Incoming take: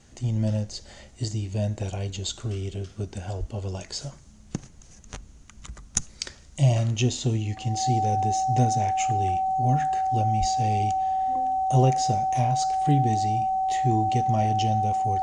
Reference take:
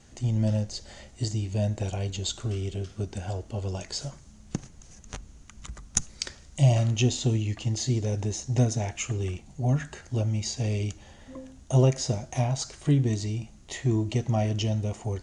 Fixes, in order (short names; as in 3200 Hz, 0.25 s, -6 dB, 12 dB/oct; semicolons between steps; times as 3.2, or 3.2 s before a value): notch 760 Hz, Q 30; de-plosive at 3.39/10.39